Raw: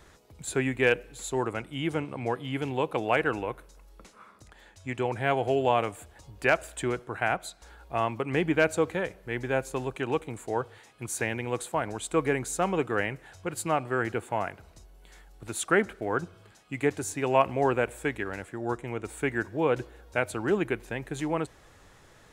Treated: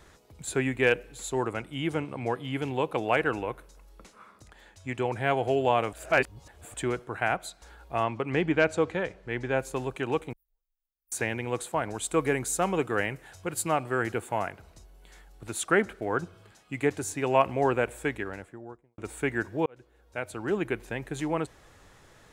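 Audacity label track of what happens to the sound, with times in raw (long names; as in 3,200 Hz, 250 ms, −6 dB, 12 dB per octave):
5.930000	6.740000	reverse
8.030000	9.590000	low-pass filter 6,400 Hz
10.330000	11.120000	inverse Chebyshev band-stop filter 110–6,800 Hz, stop band 70 dB
11.940000	14.470000	high-shelf EQ 7,500 Hz +7.5 dB
18.070000	18.980000	fade out and dull
19.660000	20.820000	fade in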